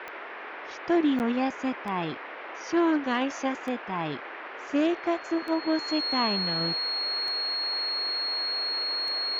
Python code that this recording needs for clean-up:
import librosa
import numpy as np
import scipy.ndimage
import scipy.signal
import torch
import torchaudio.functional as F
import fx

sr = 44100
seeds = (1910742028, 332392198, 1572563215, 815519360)

y = fx.fix_declick_ar(x, sr, threshold=10.0)
y = fx.notch(y, sr, hz=4300.0, q=30.0)
y = fx.fix_interpolate(y, sr, at_s=(1.19,), length_ms=9.6)
y = fx.noise_reduce(y, sr, print_start_s=0.0, print_end_s=0.5, reduce_db=30.0)